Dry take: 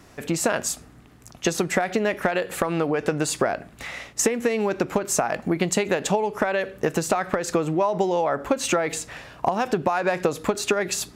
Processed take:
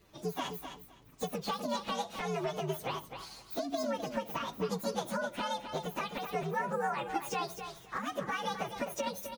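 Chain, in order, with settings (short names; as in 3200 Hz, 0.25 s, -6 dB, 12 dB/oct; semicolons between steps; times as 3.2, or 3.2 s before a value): inharmonic rescaling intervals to 129%; feedback echo 0.307 s, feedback 18%, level -8.5 dB; varispeed +19%; gain -9 dB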